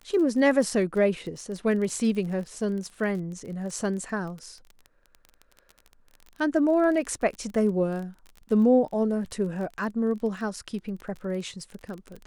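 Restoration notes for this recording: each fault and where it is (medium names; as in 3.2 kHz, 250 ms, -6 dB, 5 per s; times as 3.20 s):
crackle 23 per s -34 dBFS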